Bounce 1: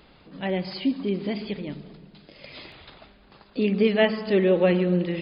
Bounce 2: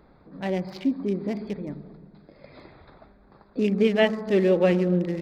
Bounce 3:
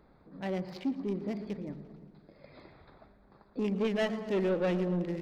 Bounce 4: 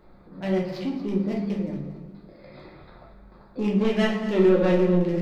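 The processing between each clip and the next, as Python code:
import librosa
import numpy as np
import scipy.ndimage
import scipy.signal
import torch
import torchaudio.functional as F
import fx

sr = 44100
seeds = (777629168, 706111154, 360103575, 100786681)

y1 = fx.wiener(x, sr, points=15)
y2 = 10.0 ** (-18.0 / 20.0) * np.tanh(y1 / 10.0 ** (-18.0 / 20.0))
y2 = fx.echo_warbled(y2, sr, ms=116, feedback_pct=63, rate_hz=2.8, cents=104, wet_db=-17.5)
y2 = y2 * librosa.db_to_amplitude(-6.0)
y3 = y2 + 10.0 ** (-14.5 / 20.0) * np.pad(y2, (int(233 * sr / 1000.0), 0))[:len(y2)]
y3 = fx.room_shoebox(y3, sr, seeds[0], volume_m3=84.0, walls='mixed', distance_m=0.95)
y3 = y3 * librosa.db_to_amplitude(3.5)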